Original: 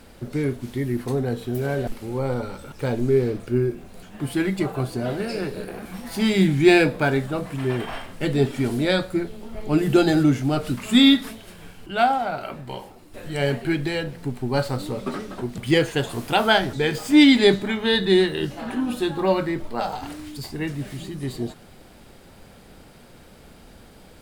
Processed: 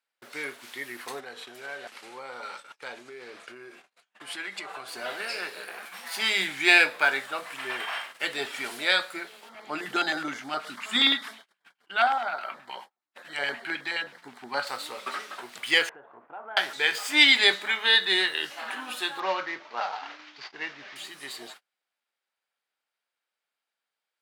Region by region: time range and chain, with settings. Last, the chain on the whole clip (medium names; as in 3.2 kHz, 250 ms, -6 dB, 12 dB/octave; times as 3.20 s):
1.20–4.88 s: low-pass 8.8 kHz + compression, threshold -26 dBFS
9.49–14.67 s: low-pass 3.4 kHz 6 dB/octave + peaking EQ 220 Hz +7 dB 0.6 oct + LFO notch square 9.5 Hz 480–2600 Hz
15.89–16.57 s: Bessel low-pass 800 Hz, order 4 + compression 8:1, threshold -31 dBFS
19.20–20.96 s: CVSD coder 32 kbps + low-pass 2.3 kHz 6 dB/octave
whole clip: gate -37 dBFS, range -35 dB; high-pass 1.4 kHz 12 dB/octave; treble shelf 4 kHz -8 dB; trim +7 dB